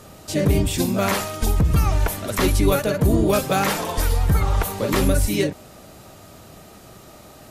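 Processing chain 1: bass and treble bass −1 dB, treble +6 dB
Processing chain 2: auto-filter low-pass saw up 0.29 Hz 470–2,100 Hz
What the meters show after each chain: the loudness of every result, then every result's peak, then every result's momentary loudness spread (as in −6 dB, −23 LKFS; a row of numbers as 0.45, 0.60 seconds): −20.5, −20.0 LKFS; −6.0, −6.0 dBFS; 4, 6 LU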